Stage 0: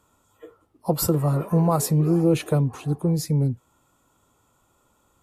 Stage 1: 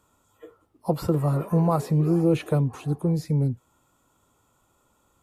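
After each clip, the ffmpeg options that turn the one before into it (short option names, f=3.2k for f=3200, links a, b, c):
-filter_complex "[0:a]acrossover=split=3600[a][b];[b]acompressor=threshold=-44dB:ratio=4:attack=1:release=60[c];[a][c]amix=inputs=2:normalize=0,volume=-1.5dB"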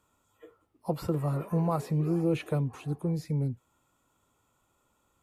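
-af "equalizer=f=2.3k:t=o:w=1:g=4,volume=-6.5dB"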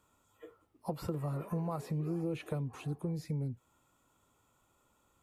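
-af "acompressor=threshold=-35dB:ratio=3"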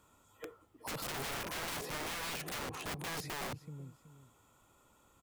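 -af "aecho=1:1:376|752:0.141|0.0353,aeval=exprs='(mod(100*val(0)+1,2)-1)/100':c=same,volume=5dB"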